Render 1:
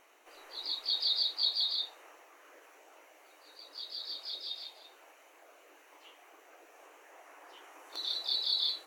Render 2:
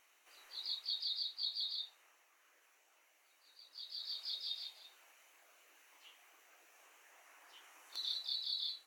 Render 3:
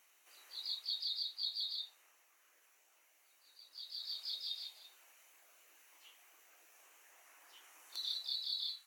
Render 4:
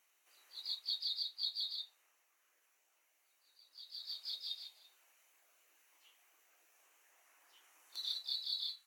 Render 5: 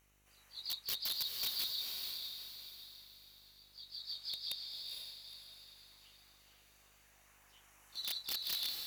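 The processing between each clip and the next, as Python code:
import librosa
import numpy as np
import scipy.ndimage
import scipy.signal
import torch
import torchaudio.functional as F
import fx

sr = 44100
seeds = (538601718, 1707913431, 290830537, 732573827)

y1 = fx.tone_stack(x, sr, knobs='5-5-5')
y1 = fx.rider(y1, sr, range_db=4, speed_s=0.5)
y1 = F.gain(torch.from_numpy(y1), 1.0).numpy()
y2 = fx.high_shelf(y1, sr, hz=6000.0, db=8.5)
y2 = fx.filter_sweep_highpass(y2, sr, from_hz=140.0, to_hz=1200.0, start_s=8.08, end_s=8.85, q=1.0)
y2 = F.gain(torch.from_numpy(y2), -2.5).numpy()
y3 = fx.upward_expand(y2, sr, threshold_db=-51.0, expansion=1.5)
y3 = F.gain(torch.from_numpy(y3), 1.5).numpy()
y4 = (np.mod(10.0 ** (32.0 / 20.0) * y3 + 1.0, 2.0) - 1.0) / 10.0 ** (32.0 / 20.0)
y4 = fx.echo_diffused(y4, sr, ms=469, feedback_pct=43, wet_db=-3.0)
y4 = fx.dmg_buzz(y4, sr, base_hz=50.0, harmonics=35, level_db=-75.0, tilt_db=-6, odd_only=False)
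y4 = F.gain(torch.from_numpy(y4), 1.0).numpy()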